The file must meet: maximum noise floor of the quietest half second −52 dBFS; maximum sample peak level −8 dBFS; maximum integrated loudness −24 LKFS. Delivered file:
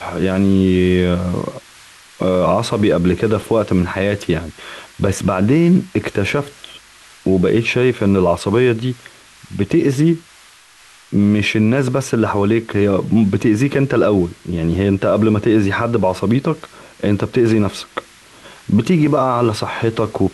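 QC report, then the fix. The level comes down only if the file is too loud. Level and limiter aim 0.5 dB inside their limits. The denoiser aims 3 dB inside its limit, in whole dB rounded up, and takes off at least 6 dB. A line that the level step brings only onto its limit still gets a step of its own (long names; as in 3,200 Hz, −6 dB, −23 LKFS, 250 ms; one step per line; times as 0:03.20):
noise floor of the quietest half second −46 dBFS: out of spec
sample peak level −4.5 dBFS: out of spec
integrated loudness −16.5 LKFS: out of spec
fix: level −8 dB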